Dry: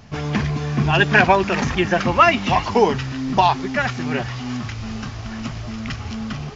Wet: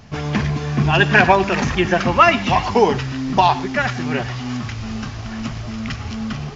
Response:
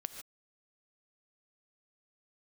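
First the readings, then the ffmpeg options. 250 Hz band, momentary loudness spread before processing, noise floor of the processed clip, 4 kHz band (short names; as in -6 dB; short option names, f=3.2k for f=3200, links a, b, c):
+1.5 dB, 15 LU, -30 dBFS, +1.5 dB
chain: -filter_complex "[0:a]asplit=2[a][b];[1:a]atrim=start_sample=2205,asetrate=57330,aresample=44100[c];[b][c]afir=irnorm=-1:irlink=0,volume=1dB[d];[a][d]amix=inputs=2:normalize=0,volume=-3dB"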